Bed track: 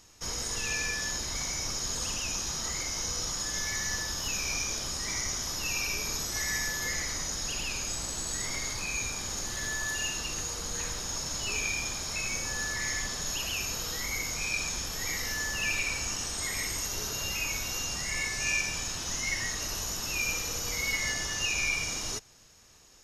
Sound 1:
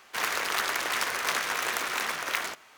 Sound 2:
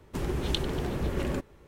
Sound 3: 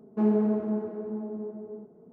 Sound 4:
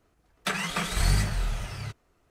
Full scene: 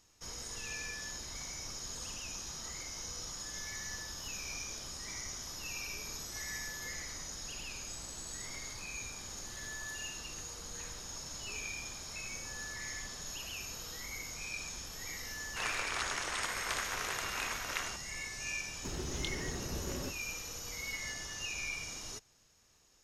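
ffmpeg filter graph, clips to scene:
ffmpeg -i bed.wav -i cue0.wav -i cue1.wav -filter_complex "[0:a]volume=-10dB[link_01];[1:a]aresample=22050,aresample=44100[link_02];[2:a]asplit=2[link_03][link_04];[link_04]adelay=24,volume=-10.5dB[link_05];[link_03][link_05]amix=inputs=2:normalize=0[link_06];[link_02]atrim=end=2.77,asetpts=PTS-STARTPTS,volume=-8.5dB,afade=type=in:duration=0.004:curve=hsin,afade=type=out:start_time=2.766:duration=0.004:curve=hsin,adelay=15420[link_07];[link_06]atrim=end=1.67,asetpts=PTS-STARTPTS,volume=-10dB,afade=type=in:duration=0.004:curve=hsin,afade=type=out:start_time=1.666:duration=0.004:curve=hsin,adelay=18700[link_08];[link_01][link_07][link_08]amix=inputs=3:normalize=0" out.wav

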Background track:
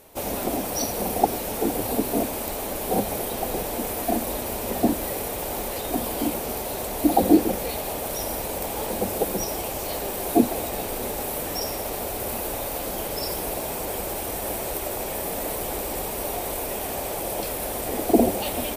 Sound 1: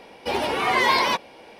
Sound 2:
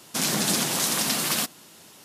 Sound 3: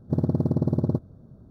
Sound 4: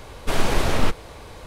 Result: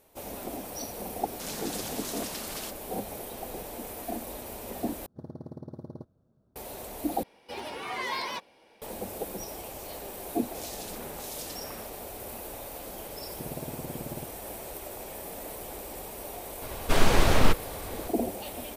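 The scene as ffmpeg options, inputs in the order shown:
ffmpeg -i bed.wav -i cue0.wav -i cue1.wav -i cue2.wav -i cue3.wav -filter_complex "[2:a]asplit=2[link_01][link_02];[3:a]asplit=2[link_03][link_04];[0:a]volume=-11dB[link_05];[link_03]lowshelf=frequency=310:gain=-10.5[link_06];[1:a]highshelf=frequency=5800:gain=6.5[link_07];[link_02]acrossover=split=2300[link_08][link_09];[link_08]aeval=exprs='val(0)*(1-1/2+1/2*cos(2*PI*1.5*n/s))':channel_layout=same[link_10];[link_09]aeval=exprs='val(0)*(1-1/2-1/2*cos(2*PI*1.5*n/s))':channel_layout=same[link_11];[link_10][link_11]amix=inputs=2:normalize=0[link_12];[link_04]bass=frequency=250:gain=-6,treble=frequency=4000:gain=2[link_13];[link_05]asplit=3[link_14][link_15][link_16];[link_14]atrim=end=5.064[link_17];[link_06]atrim=end=1.5,asetpts=PTS-STARTPTS,volume=-12dB[link_18];[link_15]atrim=start=6.556:end=7.234[link_19];[link_07]atrim=end=1.59,asetpts=PTS-STARTPTS,volume=-14dB[link_20];[link_16]atrim=start=8.816[link_21];[link_01]atrim=end=2.04,asetpts=PTS-STARTPTS,volume=-14dB,afade=type=in:duration=0.004:curve=hsin,afade=type=out:start_time=2.036:duration=0.004:curve=hsin,adelay=1250[link_22];[link_12]atrim=end=2.04,asetpts=PTS-STARTPTS,volume=-15dB,afade=type=in:duration=0.004:curve=hsin,afade=type=out:start_time=2.036:duration=0.004:curve=hsin,adelay=10400[link_23];[link_13]atrim=end=1.5,asetpts=PTS-STARTPTS,volume=-12.5dB,afade=type=in:duration=0.004:curve=hsin,afade=type=out:start_time=1.496:duration=0.004:curve=hsin,adelay=13280[link_24];[4:a]atrim=end=1.46,asetpts=PTS-STARTPTS,volume=-0.5dB,afade=type=in:duration=0.004:curve=hsin,afade=type=out:start_time=1.456:duration=0.004:curve=hsin,adelay=16620[link_25];[link_17][link_18]acrossfade=duration=0.004:curve1=hsin:curve2=hsin[link_26];[link_26][link_19]acrossfade=duration=0.004:curve1=hsin:curve2=hsin[link_27];[link_27][link_20]acrossfade=duration=0.004:curve1=hsin:curve2=hsin[link_28];[link_28][link_21]acrossfade=duration=0.004:curve1=hsin:curve2=hsin[link_29];[link_29][link_22][link_23][link_24][link_25]amix=inputs=5:normalize=0" out.wav

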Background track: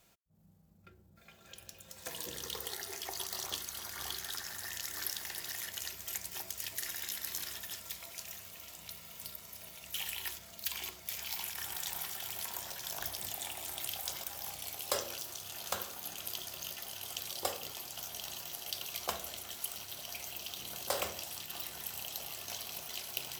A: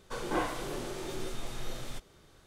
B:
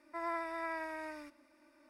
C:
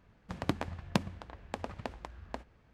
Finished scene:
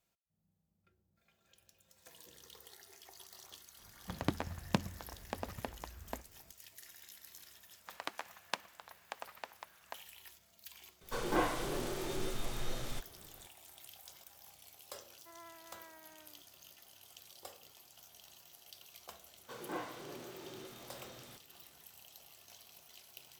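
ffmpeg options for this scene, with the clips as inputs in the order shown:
ffmpeg -i bed.wav -i cue0.wav -i cue1.wav -i cue2.wav -filter_complex "[3:a]asplit=2[link_01][link_02];[1:a]asplit=2[link_03][link_04];[0:a]volume=-15.5dB[link_05];[link_02]highpass=860[link_06];[link_04]highpass=120,lowpass=7400[link_07];[link_01]atrim=end=2.73,asetpts=PTS-STARTPTS,volume=-2.5dB,afade=type=in:duration=0.004:curve=hsin,afade=type=out:start_time=2.726:duration=0.004:curve=hsin,adelay=3790[link_08];[link_06]atrim=end=2.73,asetpts=PTS-STARTPTS,volume=-2dB,afade=type=in:duration=0.004:curve=hsin,afade=type=out:start_time=2.726:duration=0.004:curve=hsin,adelay=7580[link_09];[link_03]atrim=end=2.46,asetpts=PTS-STARTPTS,volume=-0.5dB,afade=type=in:duration=0.004:curve=hsin,afade=type=out:start_time=2.456:duration=0.004:curve=hsin,adelay=11010[link_10];[2:a]atrim=end=1.89,asetpts=PTS-STARTPTS,volume=-17dB,afade=type=in:duration=0.004:curve=hsin,afade=type=out:start_time=1.886:duration=0.004:curve=hsin,adelay=15120[link_11];[link_07]atrim=end=2.46,asetpts=PTS-STARTPTS,volume=-10dB,afade=type=in:duration=0.004:curve=hsin,afade=type=out:start_time=2.456:duration=0.004:curve=hsin,adelay=19380[link_12];[link_05][link_08][link_09][link_10][link_11][link_12]amix=inputs=6:normalize=0" out.wav

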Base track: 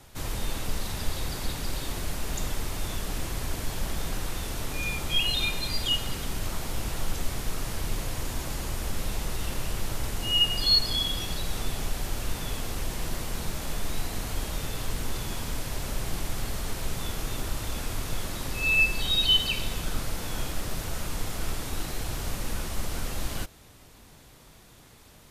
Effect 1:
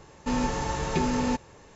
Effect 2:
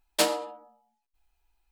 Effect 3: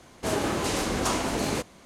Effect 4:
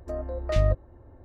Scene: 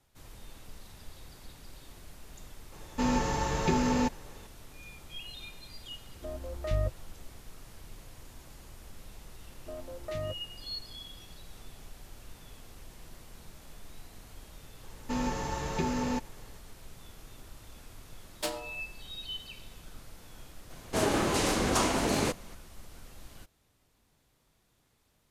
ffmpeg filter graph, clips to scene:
ffmpeg -i bed.wav -i cue0.wav -i cue1.wav -i cue2.wav -i cue3.wav -filter_complex "[1:a]asplit=2[link_01][link_02];[4:a]asplit=2[link_03][link_04];[0:a]volume=-18dB[link_05];[link_04]highpass=130[link_06];[link_01]atrim=end=1.75,asetpts=PTS-STARTPTS,volume=-1dB,afade=type=in:duration=0.004:curve=hsin,afade=type=out:start_time=1.746:duration=0.004:curve=hsin,adelay=2720[link_07];[link_03]atrim=end=1.24,asetpts=PTS-STARTPTS,volume=-7.5dB,afade=type=in:duration=0.004:curve=hsin,afade=type=out:start_time=1.236:duration=0.004:curve=hsin,adelay=6150[link_08];[link_06]atrim=end=1.24,asetpts=PTS-STARTPTS,volume=-9dB,afade=type=in:duration=0.004:curve=hsin,afade=type=out:start_time=1.236:duration=0.004:curve=hsin,adelay=9590[link_09];[link_02]atrim=end=1.75,asetpts=PTS-STARTPTS,volume=-5dB,afade=type=in:duration=0.004:curve=hsin,afade=type=out:start_time=1.746:duration=0.004:curve=hsin,adelay=14830[link_10];[2:a]atrim=end=1.71,asetpts=PTS-STARTPTS,volume=-10.5dB,afade=type=in:duration=0.004:curve=hsin,afade=type=out:start_time=1.706:duration=0.004:curve=hsin,adelay=18240[link_11];[3:a]atrim=end=1.85,asetpts=PTS-STARTPTS,volume=-0.5dB,afade=type=in:duration=0.004:curve=hsin,afade=type=out:start_time=1.846:duration=0.004:curve=hsin,adelay=20700[link_12];[link_05][link_07][link_08][link_09][link_10][link_11][link_12]amix=inputs=7:normalize=0" out.wav

